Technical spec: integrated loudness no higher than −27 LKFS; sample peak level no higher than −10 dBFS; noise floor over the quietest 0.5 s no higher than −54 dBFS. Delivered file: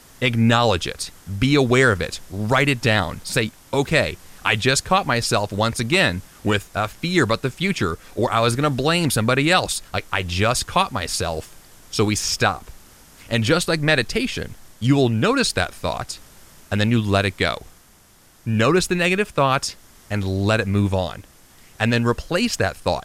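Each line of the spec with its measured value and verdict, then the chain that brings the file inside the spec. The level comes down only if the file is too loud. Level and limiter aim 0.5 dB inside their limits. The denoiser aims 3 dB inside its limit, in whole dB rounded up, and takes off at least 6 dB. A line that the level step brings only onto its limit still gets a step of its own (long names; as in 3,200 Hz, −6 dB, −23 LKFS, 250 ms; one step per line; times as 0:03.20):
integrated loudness −20.5 LKFS: out of spec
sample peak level −5.0 dBFS: out of spec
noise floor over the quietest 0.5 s −52 dBFS: out of spec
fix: level −7 dB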